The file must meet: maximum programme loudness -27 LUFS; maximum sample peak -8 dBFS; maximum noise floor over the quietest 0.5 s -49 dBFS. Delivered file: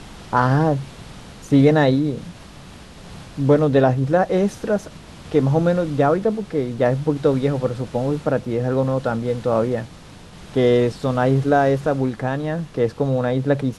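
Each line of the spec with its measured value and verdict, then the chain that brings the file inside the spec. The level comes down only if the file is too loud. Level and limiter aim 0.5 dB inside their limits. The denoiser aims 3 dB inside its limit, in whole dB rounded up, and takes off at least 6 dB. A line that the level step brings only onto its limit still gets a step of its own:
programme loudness -20.0 LUFS: fail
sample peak -3.5 dBFS: fail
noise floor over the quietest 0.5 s -41 dBFS: fail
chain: denoiser 6 dB, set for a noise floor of -41 dBFS; gain -7.5 dB

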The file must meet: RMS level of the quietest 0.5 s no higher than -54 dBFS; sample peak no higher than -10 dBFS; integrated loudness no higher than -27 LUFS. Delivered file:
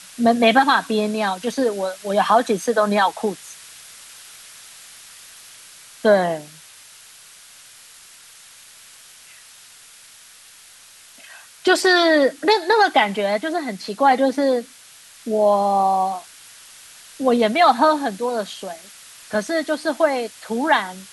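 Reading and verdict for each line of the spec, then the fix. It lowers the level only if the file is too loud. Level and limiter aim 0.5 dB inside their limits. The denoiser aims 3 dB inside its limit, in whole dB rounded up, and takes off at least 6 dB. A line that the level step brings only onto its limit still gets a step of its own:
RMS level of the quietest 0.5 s -46 dBFS: fail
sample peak -4.0 dBFS: fail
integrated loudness -19.0 LUFS: fail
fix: gain -8.5 dB

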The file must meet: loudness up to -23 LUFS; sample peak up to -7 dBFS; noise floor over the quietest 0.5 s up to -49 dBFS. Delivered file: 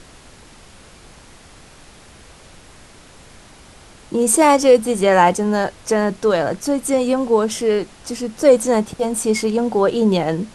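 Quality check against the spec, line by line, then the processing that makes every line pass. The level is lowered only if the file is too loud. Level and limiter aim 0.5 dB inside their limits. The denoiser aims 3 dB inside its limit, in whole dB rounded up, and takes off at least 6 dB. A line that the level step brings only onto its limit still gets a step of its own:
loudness -17.0 LUFS: fail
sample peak -2.0 dBFS: fail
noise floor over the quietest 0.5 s -44 dBFS: fail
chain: gain -6.5 dB

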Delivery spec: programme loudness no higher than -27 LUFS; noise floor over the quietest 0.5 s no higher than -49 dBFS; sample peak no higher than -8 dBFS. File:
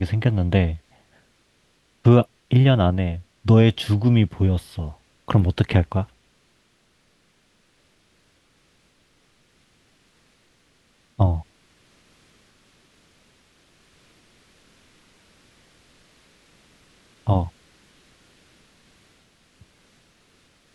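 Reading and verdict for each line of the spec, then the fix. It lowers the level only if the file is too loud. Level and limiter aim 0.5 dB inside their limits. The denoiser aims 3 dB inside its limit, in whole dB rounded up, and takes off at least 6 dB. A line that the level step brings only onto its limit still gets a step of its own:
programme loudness -20.5 LUFS: fail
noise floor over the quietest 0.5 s -63 dBFS: OK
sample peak -3.5 dBFS: fail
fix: gain -7 dB

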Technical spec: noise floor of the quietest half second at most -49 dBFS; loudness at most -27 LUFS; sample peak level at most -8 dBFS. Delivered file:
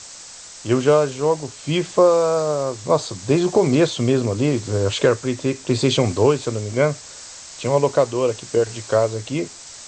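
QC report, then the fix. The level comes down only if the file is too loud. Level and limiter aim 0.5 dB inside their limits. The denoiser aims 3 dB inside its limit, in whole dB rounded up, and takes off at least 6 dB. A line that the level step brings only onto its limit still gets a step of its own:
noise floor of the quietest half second -40 dBFS: fail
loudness -20.0 LUFS: fail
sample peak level -3.5 dBFS: fail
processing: denoiser 6 dB, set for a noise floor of -40 dBFS; gain -7.5 dB

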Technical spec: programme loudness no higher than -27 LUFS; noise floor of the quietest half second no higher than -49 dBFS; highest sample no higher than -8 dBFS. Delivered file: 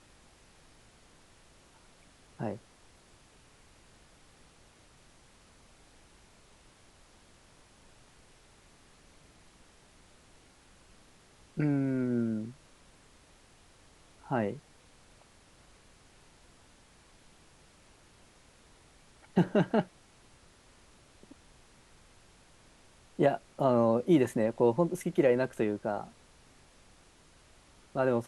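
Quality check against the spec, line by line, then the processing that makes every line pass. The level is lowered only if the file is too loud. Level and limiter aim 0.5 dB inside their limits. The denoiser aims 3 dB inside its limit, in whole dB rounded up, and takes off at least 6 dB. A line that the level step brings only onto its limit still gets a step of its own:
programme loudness -30.0 LUFS: OK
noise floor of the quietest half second -60 dBFS: OK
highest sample -13.0 dBFS: OK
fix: none

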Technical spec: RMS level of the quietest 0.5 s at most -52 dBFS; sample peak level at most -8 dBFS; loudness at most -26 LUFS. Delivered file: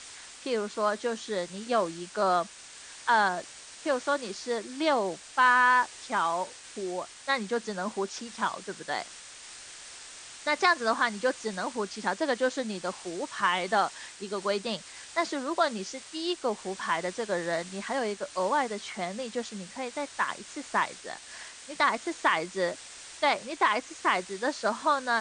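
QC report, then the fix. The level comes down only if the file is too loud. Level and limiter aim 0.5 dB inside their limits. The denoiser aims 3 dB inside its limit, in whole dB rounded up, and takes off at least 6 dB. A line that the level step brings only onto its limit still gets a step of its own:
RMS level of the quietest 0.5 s -47 dBFS: fail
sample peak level -10.0 dBFS: OK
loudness -29.5 LUFS: OK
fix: denoiser 8 dB, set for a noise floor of -47 dBFS

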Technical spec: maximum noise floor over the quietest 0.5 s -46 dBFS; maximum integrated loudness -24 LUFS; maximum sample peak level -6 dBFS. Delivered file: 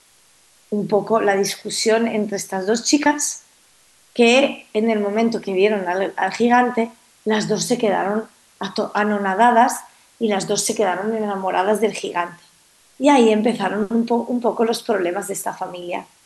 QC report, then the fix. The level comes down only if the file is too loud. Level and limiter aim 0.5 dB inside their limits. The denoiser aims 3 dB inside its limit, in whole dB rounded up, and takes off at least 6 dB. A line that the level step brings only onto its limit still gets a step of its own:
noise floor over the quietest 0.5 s -54 dBFS: OK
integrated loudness -19.5 LUFS: fail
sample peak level -3.0 dBFS: fail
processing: gain -5 dB

